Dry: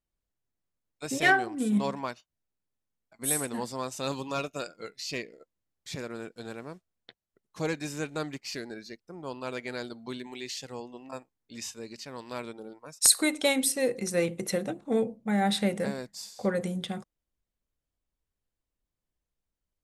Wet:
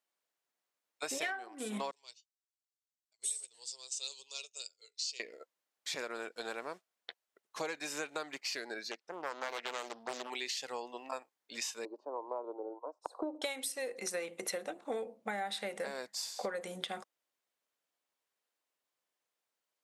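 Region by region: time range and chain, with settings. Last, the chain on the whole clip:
0:01.91–0:05.20: drawn EQ curve 110 Hz 0 dB, 160 Hz −28 dB, 290 Hz −29 dB, 410 Hz −11 dB, 610 Hz −21 dB, 1,600 Hz −24 dB, 2,900 Hz −1 dB, 4,600 Hz +6 dB, 8,200 Hz +9 dB, 12,000 Hz −17 dB + expander for the loud parts, over −49 dBFS
0:08.91–0:10.30: low-pass filter 7,400 Hz + highs frequency-modulated by the lows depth 0.83 ms
0:11.85–0:13.42: elliptic band-pass filter 300–1,000 Hz + low-shelf EQ 400 Hz +7 dB
whole clip: high-pass filter 590 Hz 12 dB per octave; high-shelf EQ 5,600 Hz −4.5 dB; downward compressor 16 to 1, threshold −41 dBFS; level +6.5 dB

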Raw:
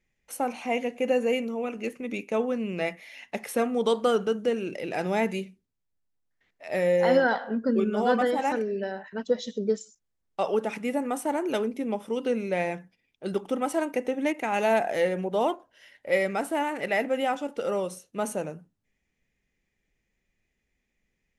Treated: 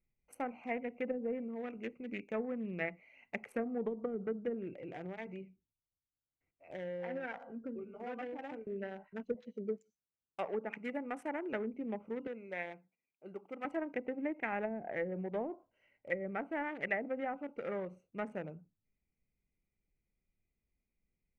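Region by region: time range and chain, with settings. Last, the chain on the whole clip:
0:04.72–0:08.67: downward compressor 2.5 to 1, threshold −29 dBFS + high-frequency loss of the air 82 metres + notch comb filter 210 Hz
0:09.34–0:11.53: high-pass filter 220 Hz 6 dB per octave + high-shelf EQ 7,000 Hz +9.5 dB
0:12.27–0:13.65: high-pass filter 740 Hz 6 dB per octave + high-shelf EQ 2,500 Hz −7 dB
whole clip: adaptive Wiener filter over 25 samples; treble cut that deepens with the level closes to 340 Hz, closed at −19.5 dBFS; graphic EQ with 10 bands 250 Hz −3 dB, 500 Hz −4 dB, 1,000 Hz −6 dB, 2,000 Hz +11 dB, 4,000 Hz −10 dB; level −5.5 dB

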